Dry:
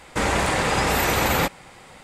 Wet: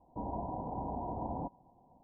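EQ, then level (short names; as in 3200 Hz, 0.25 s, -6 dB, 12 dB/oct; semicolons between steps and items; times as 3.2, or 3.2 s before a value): rippled Chebyshev low-pass 1000 Hz, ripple 9 dB; bell 190 Hz -2.5 dB; bell 410 Hz -4.5 dB 1.5 oct; -7.5 dB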